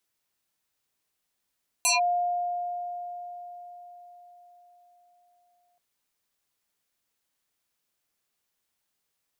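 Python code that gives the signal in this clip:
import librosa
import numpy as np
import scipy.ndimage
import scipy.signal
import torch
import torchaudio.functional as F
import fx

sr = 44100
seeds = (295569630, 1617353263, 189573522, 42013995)

y = fx.fm2(sr, length_s=3.93, level_db=-19, carrier_hz=707.0, ratio=2.41, index=6.6, index_s=0.15, decay_s=4.86, shape='linear')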